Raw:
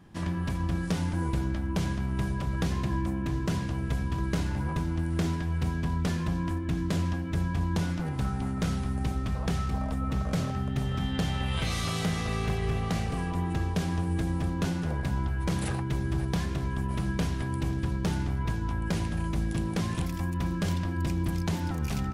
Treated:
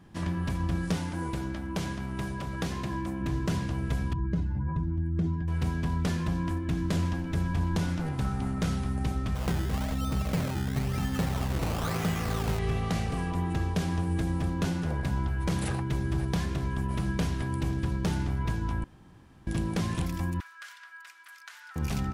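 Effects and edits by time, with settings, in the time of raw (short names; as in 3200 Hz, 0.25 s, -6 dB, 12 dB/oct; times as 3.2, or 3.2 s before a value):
0.98–3.21 low shelf 140 Hz -9 dB
4.13–5.48 spectral contrast raised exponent 1.6
6.71–8.59 frequency-shifting echo 0.123 s, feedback 36%, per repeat -90 Hz, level -15 dB
9.35–12.59 decimation with a swept rate 18× 1 Hz
18.84–19.47 room tone
20.4–21.76 ladder high-pass 1300 Hz, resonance 60%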